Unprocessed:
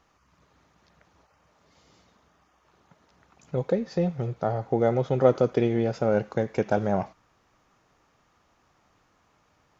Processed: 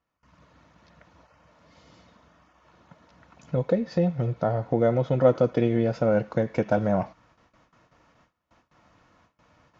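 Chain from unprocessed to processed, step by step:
noise gate with hold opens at −55 dBFS
in parallel at +2 dB: downward compressor, threshold −33 dBFS, peak gain reduction 18 dB
on the sum: high-frequency loss of the air 93 metres
notch comb filter 400 Hz

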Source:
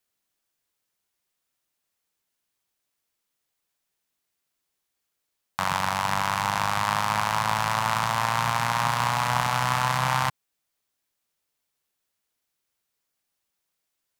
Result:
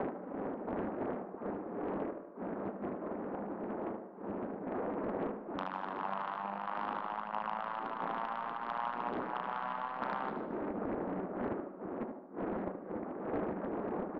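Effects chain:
adaptive Wiener filter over 41 samples
wind on the microphone 450 Hz −32 dBFS
low-pass filter 1,500 Hz 24 dB per octave
reverb reduction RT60 0.52 s
Chebyshev high-pass filter 190 Hz, order 5
downward compressor 5 to 1, threshold −46 dBFS, peak gain reduction 26 dB
sine wavefolder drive 7 dB, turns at −26.5 dBFS
shaped tremolo saw down 1.5 Hz, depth 40%
repeating echo 75 ms, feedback 48%, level −7 dB
on a send at −13 dB: convolution reverb RT60 0.55 s, pre-delay 120 ms
on the sum: highs frequency-modulated by the lows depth 0.61 ms
level +1 dB

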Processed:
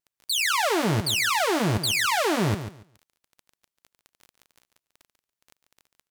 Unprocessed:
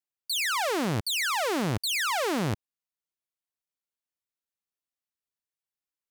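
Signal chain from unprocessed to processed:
notch comb filter 260 Hz
pitch vibrato 5.1 Hz 64 cents
surface crackle 12 per second −39 dBFS
on a send: repeating echo 142 ms, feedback 20%, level −10.5 dB
on the sum: level +5 dB

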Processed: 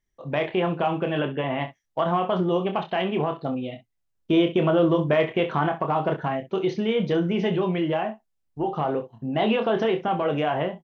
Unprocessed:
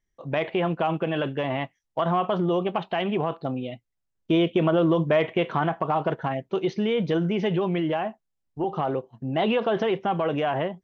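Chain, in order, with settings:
0:01.19–0:01.60: Butterworth low-pass 3,500 Hz 48 dB per octave
ambience of single reflections 27 ms −7 dB, 64 ms −14 dB

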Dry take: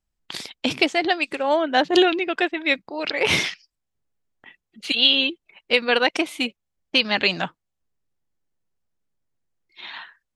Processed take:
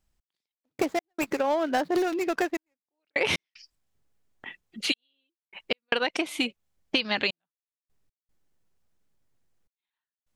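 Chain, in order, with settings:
0:00.55–0:02.85: running median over 15 samples
gate pattern "x...x.xxxxxx" 76 BPM −60 dB
downward compressor 6 to 1, threshold −29 dBFS, peak gain reduction 15 dB
level +5.5 dB

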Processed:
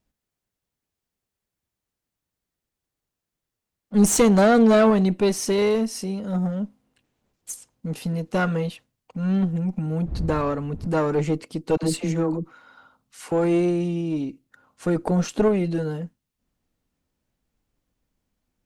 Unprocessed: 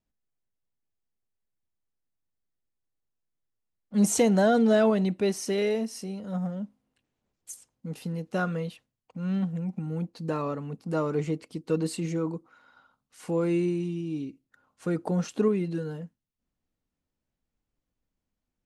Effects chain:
one-sided soft clipper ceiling −25 dBFS
0:10.05–0:10.86: wind on the microphone 110 Hz −40 dBFS
0:11.77–0:13.32: all-pass dispersion lows, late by 63 ms, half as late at 510 Hz
level +8 dB

